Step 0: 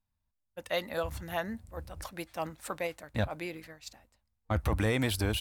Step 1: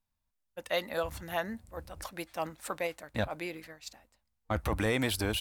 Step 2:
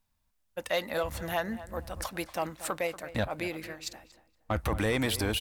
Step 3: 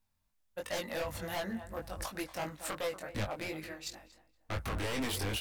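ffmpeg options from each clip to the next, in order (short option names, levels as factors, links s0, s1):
-af "equalizer=f=86:t=o:w=2.1:g=-6,volume=1.12"
-filter_complex "[0:a]asplit=2[s0][s1];[s1]acompressor=threshold=0.01:ratio=6,volume=1.33[s2];[s0][s2]amix=inputs=2:normalize=0,asoftclip=type=tanh:threshold=0.133,asplit=2[s3][s4];[s4]adelay=235,lowpass=f=2200:p=1,volume=0.188,asplit=2[s5][s6];[s6]adelay=235,lowpass=f=2200:p=1,volume=0.27,asplit=2[s7][s8];[s8]adelay=235,lowpass=f=2200:p=1,volume=0.27[s9];[s3][s5][s7][s9]amix=inputs=4:normalize=0"
-af "aeval=exprs='0.0473*(abs(mod(val(0)/0.0473+3,4)-2)-1)':c=same,flanger=delay=19.5:depth=2.6:speed=2.8"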